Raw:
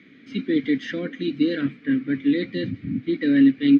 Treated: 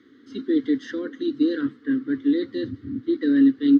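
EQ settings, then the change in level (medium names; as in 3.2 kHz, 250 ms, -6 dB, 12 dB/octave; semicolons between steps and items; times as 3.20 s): static phaser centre 640 Hz, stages 6; +1.5 dB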